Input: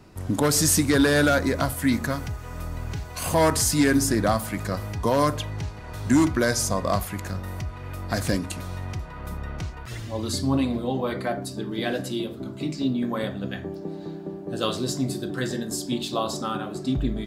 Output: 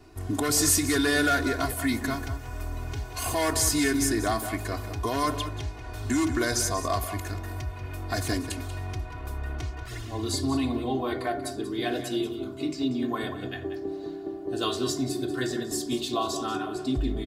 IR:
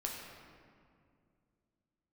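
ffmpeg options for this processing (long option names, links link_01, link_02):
-filter_complex "[0:a]aecho=1:1:2.8:0.93,acrossover=split=1300[link_01][link_02];[link_01]alimiter=limit=-15.5dB:level=0:latency=1[link_03];[link_03][link_02]amix=inputs=2:normalize=0,asplit=2[link_04][link_05];[link_05]adelay=186.6,volume=-10dB,highshelf=frequency=4000:gain=-4.2[link_06];[link_04][link_06]amix=inputs=2:normalize=0,volume=-4dB"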